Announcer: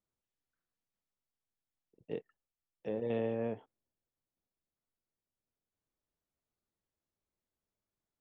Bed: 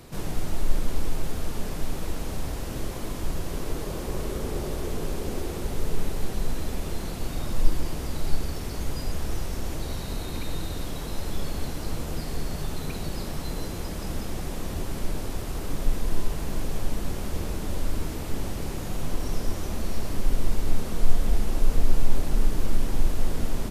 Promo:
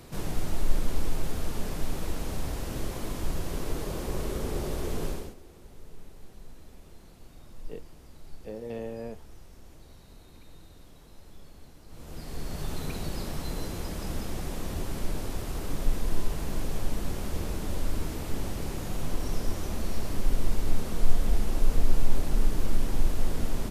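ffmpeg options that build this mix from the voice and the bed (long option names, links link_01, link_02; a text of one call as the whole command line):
ffmpeg -i stem1.wav -i stem2.wav -filter_complex "[0:a]adelay=5600,volume=-2.5dB[link_01];[1:a]volume=16.5dB,afade=type=out:start_time=5.06:duration=0.29:silence=0.11885,afade=type=in:start_time=11.88:duration=0.86:silence=0.125893[link_02];[link_01][link_02]amix=inputs=2:normalize=0" out.wav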